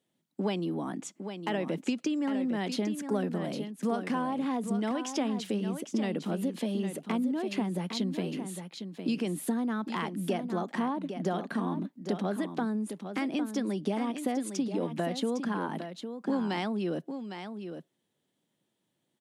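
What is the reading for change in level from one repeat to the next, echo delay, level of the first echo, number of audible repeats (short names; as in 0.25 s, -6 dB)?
no steady repeat, 0.807 s, -8.5 dB, 1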